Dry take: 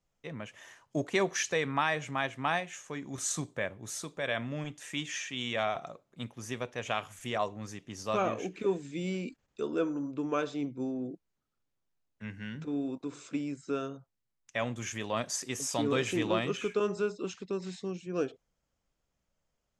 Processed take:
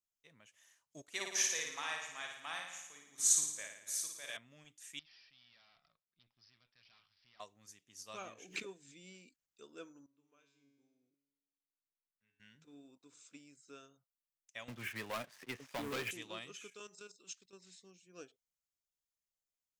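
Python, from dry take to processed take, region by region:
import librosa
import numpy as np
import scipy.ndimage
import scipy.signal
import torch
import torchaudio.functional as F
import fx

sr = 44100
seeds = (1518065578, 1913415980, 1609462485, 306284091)

y = fx.chain(x, sr, fx.low_shelf(hz=290.0, db=-11.5),
    fx.room_flutter(wall_m=9.6, rt60_s=1.1), at=(1.02, 4.37))
y = fx.chain(y, sr, fx.curve_eq(hz=(180.0, 420.0, 1200.0, 5700.0, 8500.0), db=(0, -14, -1, -1, -12)),
    fx.tube_stage(drive_db=46.0, bias=0.8),
    fx.resample_bad(factor=4, down='none', up='filtered'), at=(4.99, 7.4))
y = fx.chain(y, sr, fx.high_shelf(hz=6900.0, db=-6.0),
    fx.pre_swell(db_per_s=45.0), at=(8.33, 9.15))
y = fx.chain(y, sr, fx.high_shelf(hz=8300.0, db=-7.0),
    fx.comb_fb(f0_hz=140.0, decay_s=1.3, harmonics='all', damping=0.0, mix_pct=90), at=(10.06, 12.4))
y = fx.chain(y, sr, fx.lowpass(hz=2400.0, slope=24),
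    fx.leveller(passes=3),
    fx.band_squash(depth_pct=40), at=(14.68, 16.11))
y = fx.chain(y, sr, fx.high_shelf(hz=2300.0, db=8.0),
    fx.level_steps(step_db=10), at=(16.68, 17.53))
y = scipy.signal.lfilter([1.0, -0.9], [1.0], y)
y = fx.upward_expand(y, sr, threshold_db=-55.0, expansion=1.5)
y = F.gain(torch.from_numpy(y), 5.0).numpy()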